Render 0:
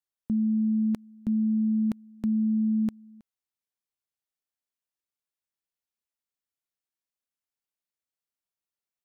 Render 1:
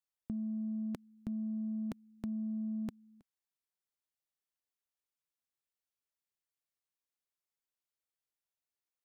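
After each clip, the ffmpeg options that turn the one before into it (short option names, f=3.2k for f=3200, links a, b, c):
-filter_complex "[0:a]equalizer=f=220:w=4.7:g=-8,asplit=2[a][b];[b]asoftclip=type=tanh:threshold=-32dB,volume=-7dB[c];[a][c]amix=inputs=2:normalize=0,volume=-7dB"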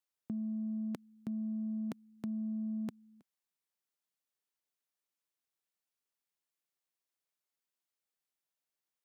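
-af "highpass=150,volume=1dB"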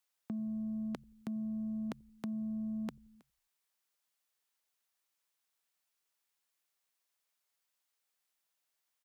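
-filter_complex "[0:a]acrossover=split=590[a][b];[a]asplit=4[c][d][e][f];[d]adelay=87,afreqshift=-81,volume=-23.5dB[g];[e]adelay=174,afreqshift=-162,volume=-29.5dB[h];[f]adelay=261,afreqshift=-243,volume=-35.5dB[i];[c][g][h][i]amix=inputs=4:normalize=0[j];[b]aeval=exprs='0.0447*sin(PI/2*1.58*val(0)/0.0447)':c=same[k];[j][k]amix=inputs=2:normalize=0,volume=-1dB"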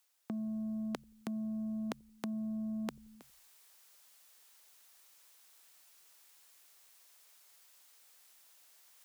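-af "bass=f=250:g=-9,treble=f=4k:g=3,areverse,acompressor=mode=upward:threshold=-56dB:ratio=2.5,areverse,volume=5.5dB"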